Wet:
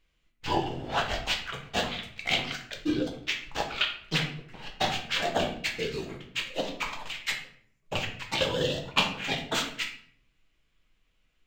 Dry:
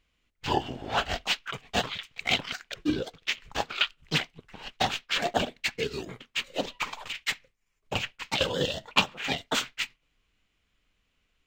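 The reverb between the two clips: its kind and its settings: simulated room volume 94 m³, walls mixed, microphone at 0.65 m; trim -2.5 dB

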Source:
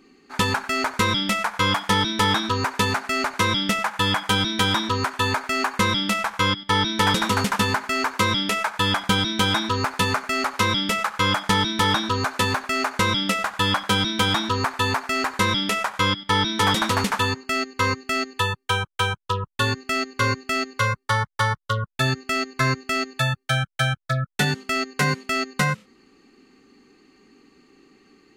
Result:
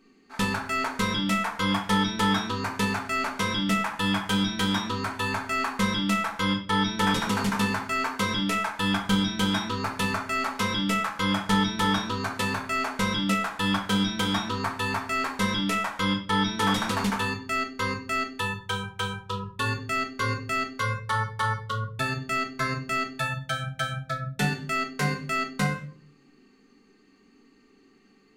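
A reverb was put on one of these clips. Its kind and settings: simulated room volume 370 m³, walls furnished, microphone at 1.6 m; trim -7.5 dB

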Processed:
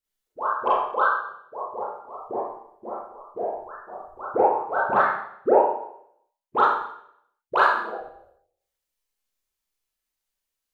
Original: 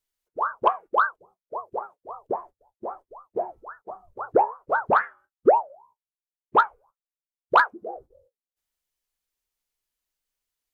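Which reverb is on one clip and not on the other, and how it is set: Schroeder reverb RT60 0.69 s, combs from 29 ms, DRR -8 dB; trim -7.5 dB

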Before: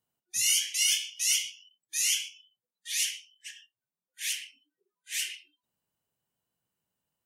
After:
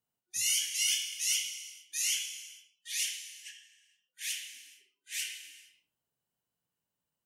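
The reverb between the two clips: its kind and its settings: gated-style reverb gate 490 ms falling, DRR 6 dB; trim -4.5 dB

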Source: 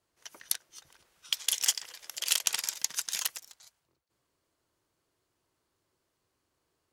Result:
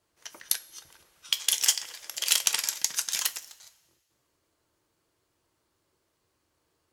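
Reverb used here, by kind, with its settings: two-slope reverb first 0.23 s, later 1.6 s, from -19 dB, DRR 9 dB; trim +3.5 dB

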